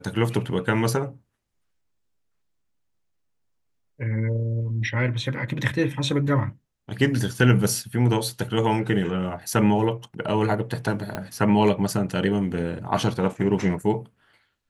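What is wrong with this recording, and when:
11.15 pop -14 dBFS

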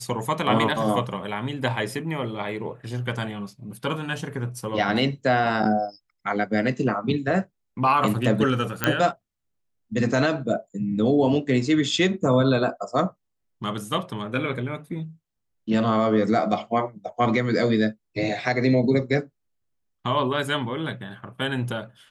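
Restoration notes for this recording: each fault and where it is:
8.84 pop -5 dBFS

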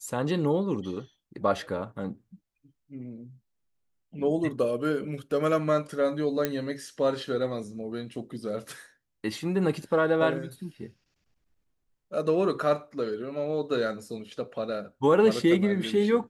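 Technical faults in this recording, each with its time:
6.45 pop -11 dBFS

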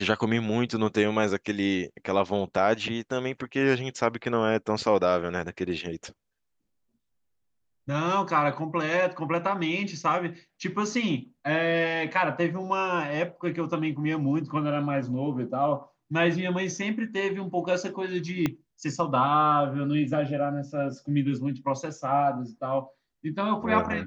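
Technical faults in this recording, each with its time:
18.46 pop -12 dBFS

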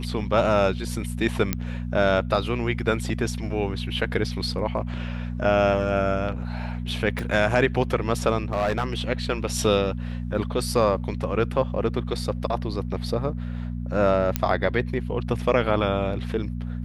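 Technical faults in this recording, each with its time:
hum 60 Hz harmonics 4 -30 dBFS
1.53 pop -8 dBFS
7.19 pop
8.52–8.94 clipped -18.5 dBFS
14.36 pop -6 dBFS

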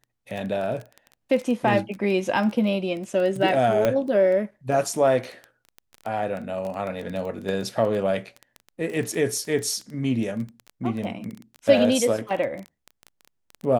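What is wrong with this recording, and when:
crackle 12/s -28 dBFS
3.85 pop -9 dBFS

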